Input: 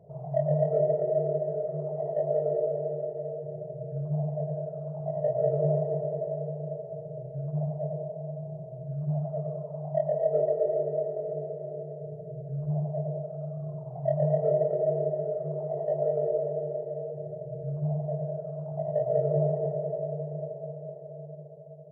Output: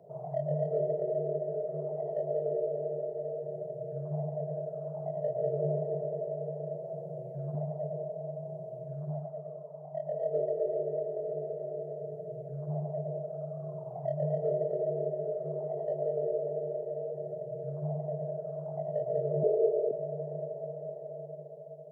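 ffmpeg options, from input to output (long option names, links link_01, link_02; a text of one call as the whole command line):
ffmpeg -i in.wav -filter_complex "[0:a]asettb=1/sr,asplit=3[link_01][link_02][link_03];[link_01]atrim=end=6.744[link_04];[link_02]atrim=start=6.74:end=7.55,asetpts=PTS-STARTPTS,afade=type=in:duration=0.004:curve=qsin,afade=type=out:start_time=0.806:duration=0.004:curve=qsin,aecho=1:1:5.7:0.7,atrim=end_sample=35721[link_05];[link_03]atrim=start=7.546[link_06];[link_04][link_05]acrossfade=duration=0.004:curve1=hsin:curve2=qsin[link_07];[link_07][link_06]acrossfade=duration=0.004:curve1=qsin:curve2=hsin,asettb=1/sr,asplit=3[link_08][link_09][link_10];[link_08]atrim=end=19.434[link_11];[link_09]atrim=start=19.43:end=19.91,asetpts=PTS-STARTPTS,afade=type=in:duration=0.004:curve=qsin,afade=type=out:start_time=0.476:duration=0.004:curve=qsin,highpass=frequency=410:width_type=q:width=4.6[link_12];[link_10]atrim=start=19.906[link_13];[link_11][link_12]acrossfade=duration=0.004:curve1=hsin:curve2=qsin[link_14];[link_14][link_13]acrossfade=duration=0.004:curve1=qsin:curve2=hsin,asplit=3[link_15][link_16][link_17];[link_15]atrim=end=9.36,asetpts=PTS-STARTPTS,afade=type=out:start_time=9.01:duration=0.35:silence=0.375837[link_18];[link_16]atrim=start=9.36:end=9.92,asetpts=PTS-STARTPTS,volume=-8.5dB[link_19];[link_17]atrim=start=9.92,asetpts=PTS-STARTPTS,afade=type=in:duration=0.35:silence=0.375837[link_20];[link_18][link_19][link_20]concat=n=3:v=0:a=1,highpass=230,acrossover=split=460|3000[link_21][link_22][link_23];[link_22]acompressor=threshold=-40dB:ratio=6[link_24];[link_21][link_24][link_23]amix=inputs=3:normalize=0,volume=2dB" out.wav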